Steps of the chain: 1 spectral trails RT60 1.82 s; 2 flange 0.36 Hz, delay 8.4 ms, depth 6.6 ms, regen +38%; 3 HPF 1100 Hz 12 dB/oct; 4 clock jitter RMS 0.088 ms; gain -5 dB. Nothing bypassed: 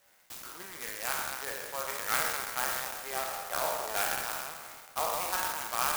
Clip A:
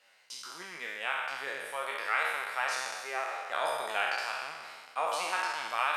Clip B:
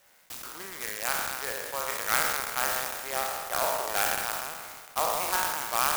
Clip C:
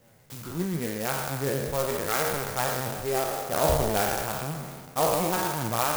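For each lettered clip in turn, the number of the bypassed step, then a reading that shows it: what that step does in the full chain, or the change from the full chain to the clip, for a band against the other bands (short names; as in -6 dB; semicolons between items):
4, 8 kHz band -9.5 dB; 2, loudness change +4.0 LU; 3, 125 Hz band +19.5 dB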